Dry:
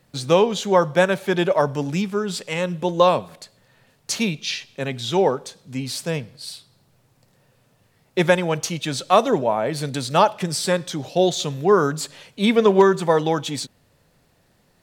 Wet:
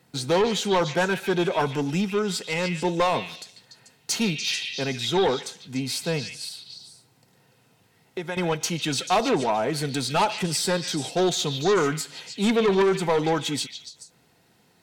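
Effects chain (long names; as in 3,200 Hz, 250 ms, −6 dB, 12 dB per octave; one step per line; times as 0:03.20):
high-pass filter 150 Hz 6 dB per octave
notch comb filter 580 Hz
0:06.45–0:08.37: downward compressor 2.5 to 1, threshold −36 dBFS, peak gain reduction 14.5 dB
soft clipping −18.5 dBFS, distortion −8 dB
echo through a band-pass that steps 146 ms, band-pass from 2,800 Hz, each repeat 0.7 octaves, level −3.5 dB
every ending faded ahead of time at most 240 dB per second
level +2 dB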